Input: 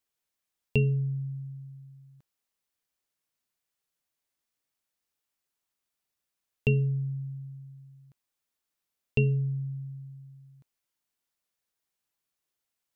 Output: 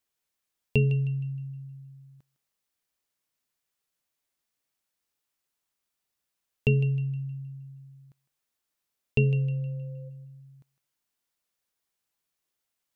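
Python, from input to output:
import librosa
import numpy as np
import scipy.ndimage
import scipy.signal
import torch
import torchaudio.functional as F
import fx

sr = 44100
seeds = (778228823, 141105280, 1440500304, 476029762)

y = fx.dmg_tone(x, sr, hz=520.0, level_db=-50.0, at=(9.18, 10.08), fade=0.02)
y = fx.echo_thinned(y, sr, ms=156, feedback_pct=40, hz=830.0, wet_db=-12)
y = y * 10.0 ** (1.5 / 20.0)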